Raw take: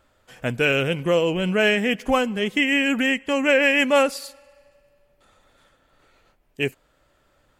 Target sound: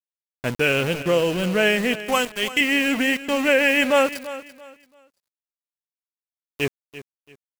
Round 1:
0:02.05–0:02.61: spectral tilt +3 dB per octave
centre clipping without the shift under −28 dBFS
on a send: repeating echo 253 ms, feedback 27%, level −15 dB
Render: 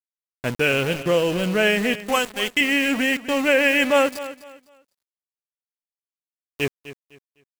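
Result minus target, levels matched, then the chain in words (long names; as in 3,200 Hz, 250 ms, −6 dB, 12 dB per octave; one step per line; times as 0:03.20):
echo 85 ms early
0:02.05–0:02.61: spectral tilt +3 dB per octave
centre clipping without the shift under −28 dBFS
on a send: repeating echo 338 ms, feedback 27%, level −15 dB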